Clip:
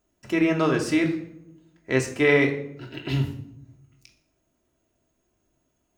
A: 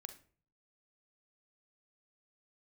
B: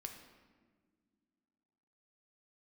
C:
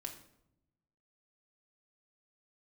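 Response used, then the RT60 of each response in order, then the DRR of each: C; 0.45 s, not exponential, 0.80 s; 8.0, 3.5, 1.0 dB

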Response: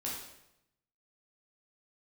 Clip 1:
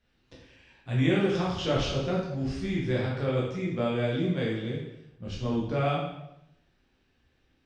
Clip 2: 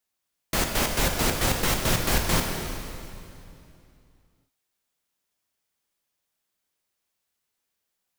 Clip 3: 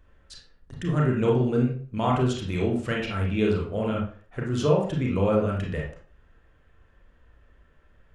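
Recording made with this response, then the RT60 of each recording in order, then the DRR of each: 1; 0.85, 2.7, 0.45 s; -5.0, 2.0, -2.5 dB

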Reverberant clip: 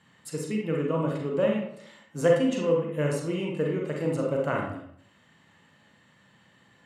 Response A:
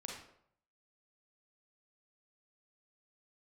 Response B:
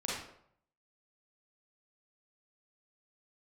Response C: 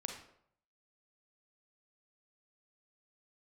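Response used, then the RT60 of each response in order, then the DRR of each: A; 0.70, 0.70, 0.70 s; -1.0, -6.0, 3.0 dB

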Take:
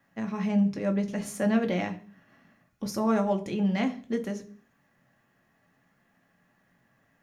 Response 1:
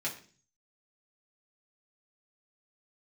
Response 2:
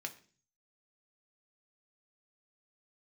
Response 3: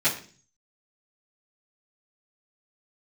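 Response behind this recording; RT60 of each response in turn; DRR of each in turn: 2; 0.40, 0.40, 0.40 s; -5.5, 4.0, -13.5 dB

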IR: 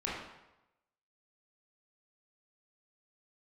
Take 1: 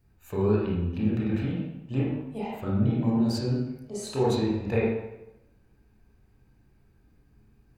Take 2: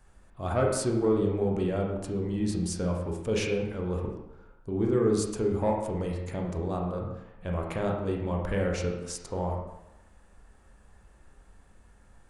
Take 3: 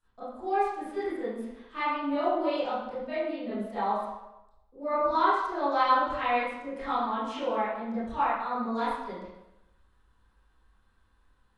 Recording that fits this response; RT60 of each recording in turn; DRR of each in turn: 1; 0.95, 0.95, 0.95 s; -6.5, -0.5, -16.0 dB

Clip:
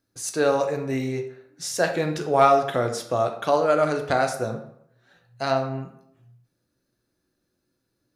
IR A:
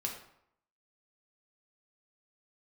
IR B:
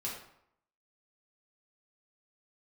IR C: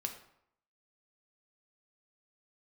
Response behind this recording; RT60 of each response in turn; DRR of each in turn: C; 0.70, 0.70, 0.70 s; 0.0, -5.5, 4.0 dB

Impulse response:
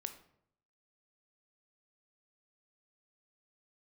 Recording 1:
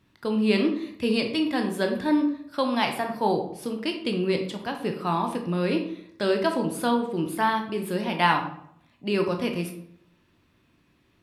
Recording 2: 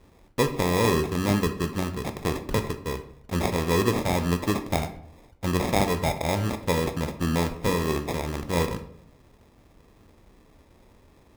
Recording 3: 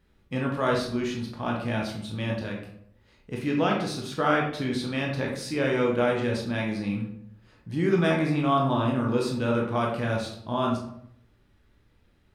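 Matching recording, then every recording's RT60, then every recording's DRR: 2; 0.70, 0.70, 0.70 s; 3.5, 7.5, -1.5 dB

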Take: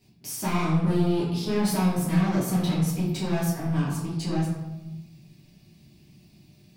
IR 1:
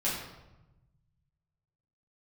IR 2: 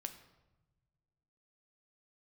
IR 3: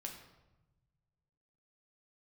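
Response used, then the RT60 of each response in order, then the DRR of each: 1; 1.0 s, not exponential, 1.0 s; -8.5, 7.0, 1.0 dB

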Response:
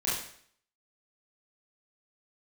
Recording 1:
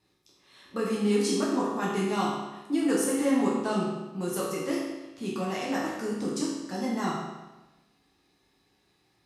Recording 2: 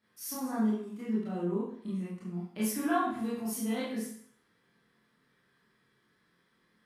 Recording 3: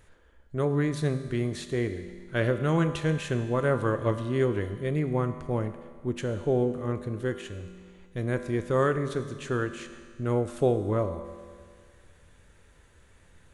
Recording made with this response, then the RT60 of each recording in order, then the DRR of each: 2; 1.1, 0.60, 1.9 s; -5.5, -9.0, 8.5 dB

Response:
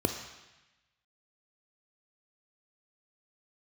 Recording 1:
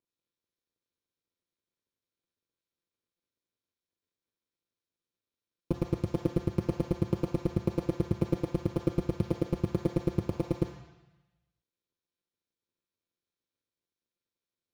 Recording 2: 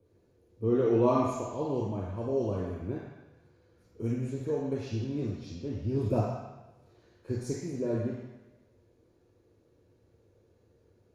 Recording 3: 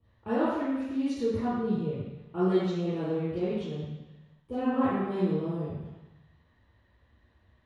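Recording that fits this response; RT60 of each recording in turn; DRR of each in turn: 1; 1.0, 1.0, 1.0 s; 6.0, -2.5, -12.0 dB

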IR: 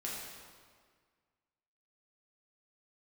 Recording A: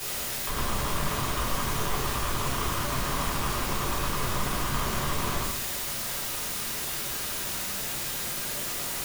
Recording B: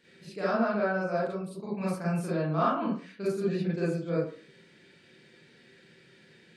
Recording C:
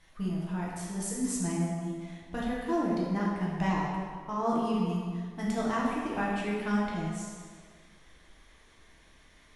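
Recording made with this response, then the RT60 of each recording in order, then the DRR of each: C; 0.65, 0.45, 1.8 s; -8.0, -9.0, -5.5 dB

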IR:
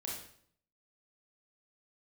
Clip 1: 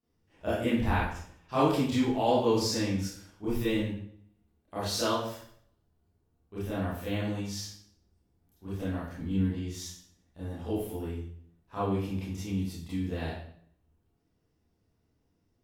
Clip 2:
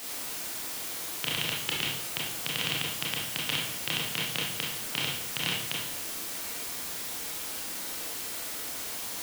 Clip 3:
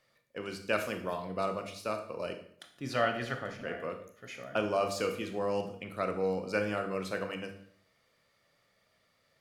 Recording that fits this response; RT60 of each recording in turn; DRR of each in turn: 2; 0.60, 0.60, 0.60 s; -12.0, -4.0, 6.0 dB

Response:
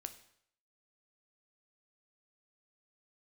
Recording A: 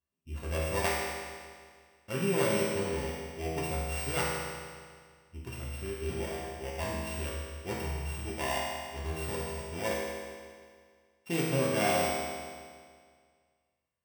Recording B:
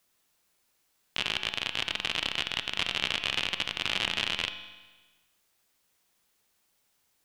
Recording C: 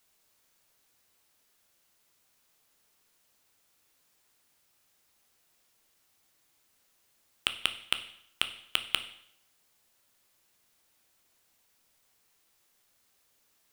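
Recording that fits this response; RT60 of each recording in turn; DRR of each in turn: C; 1.9, 1.3, 0.65 s; -6.5, 9.0, 8.5 dB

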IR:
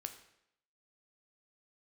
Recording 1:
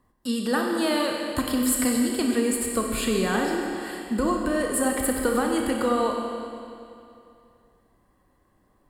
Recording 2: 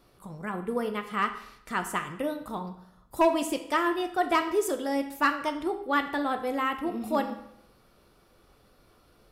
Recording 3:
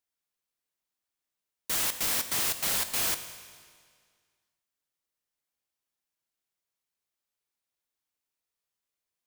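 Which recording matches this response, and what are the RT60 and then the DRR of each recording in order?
2; 2.6, 0.75, 1.9 s; 0.5, 6.5, 9.0 dB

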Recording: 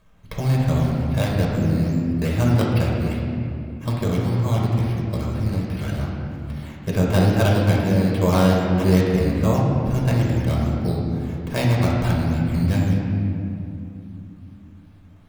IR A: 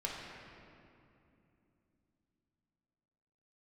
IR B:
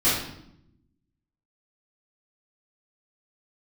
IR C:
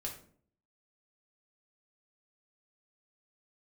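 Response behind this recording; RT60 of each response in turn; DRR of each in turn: A; 2.8, 0.75, 0.55 s; -4.0, -13.5, -1.0 dB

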